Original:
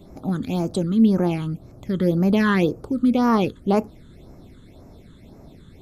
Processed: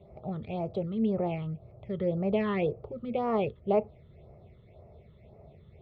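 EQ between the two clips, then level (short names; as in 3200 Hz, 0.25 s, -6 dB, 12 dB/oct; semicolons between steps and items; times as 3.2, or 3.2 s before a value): speaker cabinet 100–2300 Hz, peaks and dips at 110 Hz -5 dB, 180 Hz -8 dB, 330 Hz -7 dB, 510 Hz -5 dB, 790 Hz -7 dB, 1100 Hz -9 dB; fixed phaser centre 650 Hz, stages 4; notch 930 Hz, Q 11; +2.5 dB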